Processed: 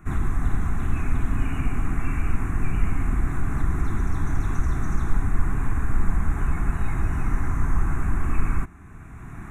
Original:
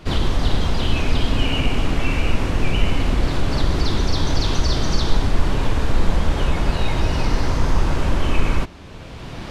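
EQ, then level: Butterworth band-stop 4.7 kHz, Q 1.2; band-stop 920 Hz, Q 7.9; static phaser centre 1.3 kHz, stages 4; -3.5 dB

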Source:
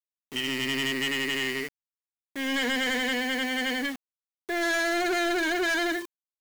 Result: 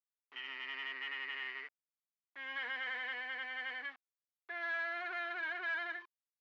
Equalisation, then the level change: ladder band-pass 1.6 kHz, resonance 20%; distance through air 200 m; +2.5 dB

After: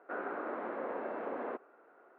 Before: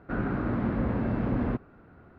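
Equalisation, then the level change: high-pass 430 Hz 24 dB/octave; low-pass 1.7 kHz 6 dB/octave; distance through air 210 m; 0.0 dB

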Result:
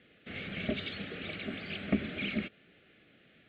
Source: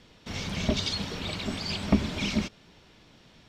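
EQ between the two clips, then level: high-pass 640 Hz 6 dB/octave; distance through air 440 m; static phaser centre 2.3 kHz, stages 4; +4.5 dB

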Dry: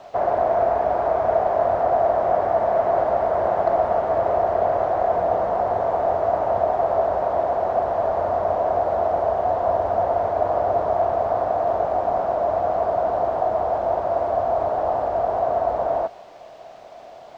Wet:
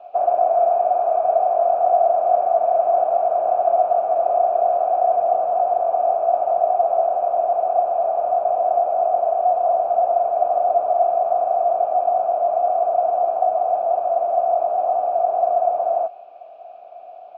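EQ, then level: vowel filter a; distance through air 100 m; band-stop 1.1 kHz, Q 5.8; +6.5 dB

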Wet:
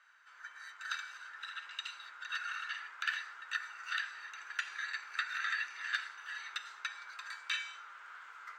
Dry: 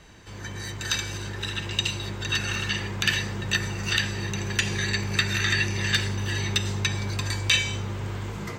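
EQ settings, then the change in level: dynamic bell 4 kHz, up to +5 dB, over -44 dBFS, Q 7.7; ladder high-pass 1.3 kHz, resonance 75%; tilt EQ -3 dB/octave; -2.0 dB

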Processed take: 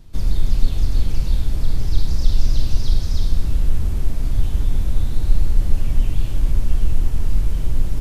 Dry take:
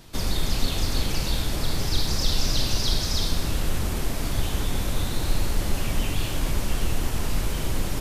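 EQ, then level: bass shelf 87 Hz +12 dB; bass shelf 370 Hz +9 dB; -10.0 dB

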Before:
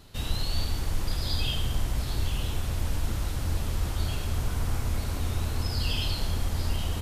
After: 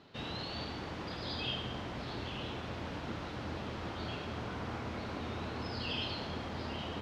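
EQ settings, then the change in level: high-pass 200 Hz 12 dB/octave; low-pass 12 kHz 12 dB/octave; distance through air 240 m; 0.0 dB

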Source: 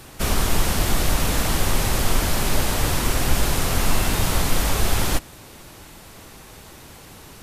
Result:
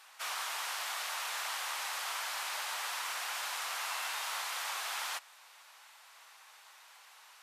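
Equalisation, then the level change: high-pass 870 Hz 24 dB/octave; treble shelf 7.7 kHz -10 dB; -8.5 dB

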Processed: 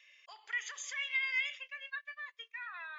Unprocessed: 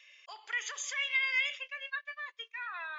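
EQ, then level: peaking EQ 1.9 kHz +4 dB 0.34 oct; dynamic bell 350 Hz, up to -7 dB, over -55 dBFS, Q 0.77; -5.0 dB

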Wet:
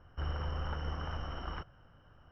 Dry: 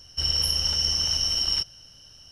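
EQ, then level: four-pole ladder low-pass 1.6 kHz, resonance 40%; +6.5 dB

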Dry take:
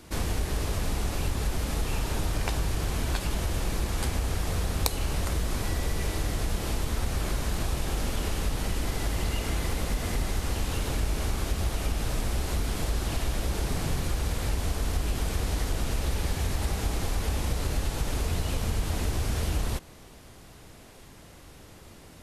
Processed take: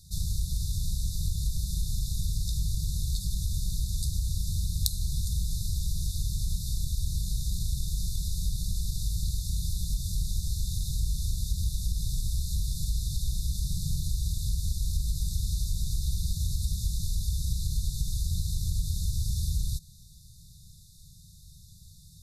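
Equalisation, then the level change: brick-wall FIR band-stop 190–3500 Hz; 0.0 dB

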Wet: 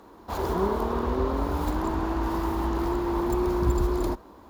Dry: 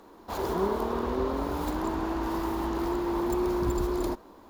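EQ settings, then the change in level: high-pass 47 Hz; bass shelf 110 Hz +12 dB; peaking EQ 1.1 kHz +2.5 dB 1.5 oct; 0.0 dB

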